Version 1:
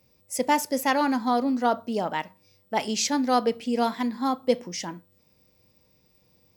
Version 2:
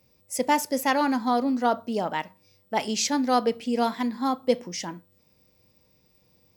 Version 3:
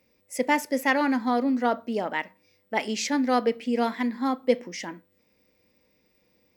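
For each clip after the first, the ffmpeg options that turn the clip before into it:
ffmpeg -i in.wav -af anull out.wav
ffmpeg -i in.wav -af "equalizer=frequency=125:width_type=o:width=1:gain=-7,equalizer=frequency=250:width_type=o:width=1:gain=7,equalizer=frequency=500:width_type=o:width=1:gain=5,equalizer=frequency=2000:width_type=o:width=1:gain=11,volume=-6dB" out.wav

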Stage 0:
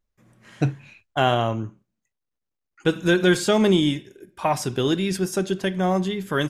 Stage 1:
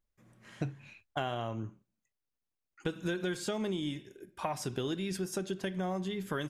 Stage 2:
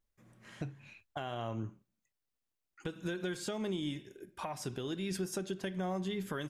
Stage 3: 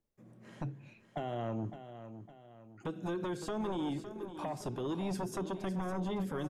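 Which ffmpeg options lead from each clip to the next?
ffmpeg -i in.wav -af "acompressor=threshold=-26dB:ratio=6,volume=-5.5dB" out.wav
ffmpeg -i in.wav -af "alimiter=level_in=2.5dB:limit=-24dB:level=0:latency=1:release=403,volume=-2.5dB" out.wav
ffmpeg -i in.wav -filter_complex "[0:a]acrossover=split=110|750|3000[link_01][link_02][link_03][link_04];[link_02]aeval=exprs='0.0473*sin(PI/2*2.82*val(0)/0.0473)':channel_layout=same[link_05];[link_01][link_05][link_03][link_04]amix=inputs=4:normalize=0,aecho=1:1:559|1118|1677|2236:0.266|0.114|0.0492|0.0212,volume=-6dB" out.wav

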